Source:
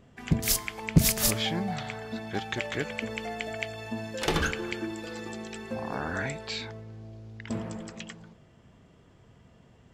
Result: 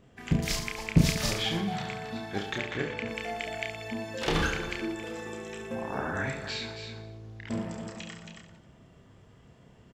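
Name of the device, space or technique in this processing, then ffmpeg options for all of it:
ducked delay: -filter_complex "[0:a]acrossover=split=6100[s0][s1];[s1]acompressor=threshold=0.00562:ratio=4:attack=1:release=60[s2];[s0][s2]amix=inputs=2:normalize=0,asettb=1/sr,asplit=3[s3][s4][s5];[s3]atrim=end=2.584[s6];[s4]atrim=start=2.58:end=3.08,asetpts=PTS-STARTPTS,afade=t=in:d=0.004:c=qsin,afade=t=out:st=0.496:d=0.004:c=qsin,aemphasis=mode=reproduction:type=50fm[s7];[s5]atrim=start=3.076[s8];[s6][s7]acrossfade=d=0.004:c1=hsin:c2=qsin[s9];[s9][s8]acrossfade=d=0.004:c1=qsin:c2=hsin,asplit=3[s10][s11][s12];[s11]adelay=273,volume=0.501[s13];[s12]apad=whole_len=450006[s14];[s13][s14]sidechaincompress=threshold=0.01:ratio=8:attack=6.2:release=202[s15];[s10][s15]amix=inputs=2:normalize=0,asettb=1/sr,asplit=3[s16][s17][s18];[s16]atrim=end=4.914[s19];[s17]atrim=start=4.91:end=6.27,asetpts=PTS-STARTPTS,afade=t=in:d=0.004:c=qsin,afade=t=out:st=1.356:d=0.004:c=qsin,equalizer=f=4500:t=o:w=0.22:g=-14.5[s20];[s18]atrim=start=6.266[s21];[s19][s20]acrossfade=d=0.004:c1=hsin:c2=qsin[s22];[s22][s21]acrossfade=d=0.004:c1=qsin:c2=hsin,aecho=1:1:30|69|119.7|185.6|271.3:0.631|0.398|0.251|0.158|0.1,volume=0.794"

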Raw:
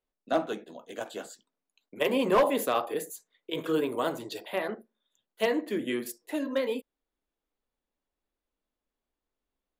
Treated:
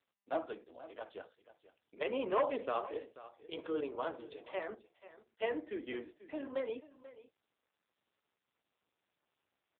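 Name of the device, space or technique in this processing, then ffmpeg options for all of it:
satellite phone: -af "highpass=330,lowpass=3400,aecho=1:1:487:0.15,volume=0.447" -ar 8000 -c:a libopencore_amrnb -b:a 6700

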